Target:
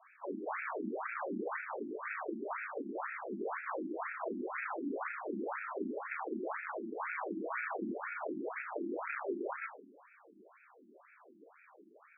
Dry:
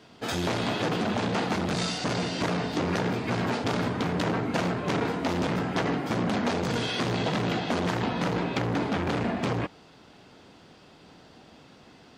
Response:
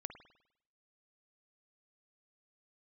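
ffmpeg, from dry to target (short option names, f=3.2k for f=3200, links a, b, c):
-filter_complex "[0:a]asettb=1/sr,asplit=3[a][b][c];[a]atrim=end=6.974[d];[b]atrim=start=6.97:end=7.83,asetpts=PTS-STARTPTS,afade=t=in:d=0.004:c=qsin,afade=t=out:st=0.856:d=0.004:c=qsin,aecho=1:1:6.3:0.86,atrim=end_sample=37926[e];[c]atrim=start=7.826[f];[d][e]acrossfade=d=0.004:c1=hsin:c2=qsin[g];[g][f]acrossfade=d=0.004:c1=qsin:c2=hsin,highpass=f=360:t=q:w=0.5412,highpass=f=360:t=q:w=1.307,lowpass=f=3k:t=q:w=0.5176,lowpass=f=3k:t=q:w=0.7071,lowpass=f=3k:t=q:w=1.932,afreqshift=-300,aeval=exprs='(mod(12.6*val(0)+1,2)-1)/12.6':c=same,flanger=delay=1.8:depth=5:regen=-85:speed=0.29:shape=sinusoidal,asoftclip=type=tanh:threshold=-32.5dB,asplit=2[h][i];[1:a]atrim=start_sample=2205,lowshelf=f=120:g=8,adelay=35[j];[i][j]afir=irnorm=-1:irlink=0,volume=-1dB[k];[h][k]amix=inputs=2:normalize=0,afftfilt=real='re*between(b*sr/1024,260*pow(1900/260,0.5+0.5*sin(2*PI*2*pts/sr))/1.41,260*pow(1900/260,0.5+0.5*sin(2*PI*2*pts/sr))*1.41)':imag='im*between(b*sr/1024,260*pow(1900/260,0.5+0.5*sin(2*PI*2*pts/sr))/1.41,260*pow(1900/260,0.5+0.5*sin(2*PI*2*pts/sr))*1.41)':win_size=1024:overlap=0.75,volume=5.5dB"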